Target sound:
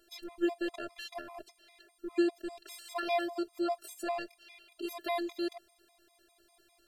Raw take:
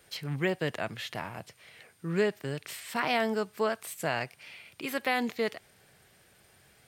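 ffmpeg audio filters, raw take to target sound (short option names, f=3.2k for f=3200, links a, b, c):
-af "afftfilt=real='hypot(re,im)*cos(PI*b)':imag='0':win_size=512:overlap=0.75,equalizer=f=400:t=o:w=0.33:g=9,equalizer=f=630:t=o:w=0.33:g=5,equalizer=f=2k:t=o:w=0.33:g=-7,equalizer=f=4k:t=o:w=0.33:g=5,afftfilt=real='re*gt(sin(2*PI*5*pts/sr)*(1-2*mod(floor(b*sr/1024/660),2)),0)':imag='im*gt(sin(2*PI*5*pts/sr)*(1-2*mod(floor(b*sr/1024/660),2)),0)':win_size=1024:overlap=0.75"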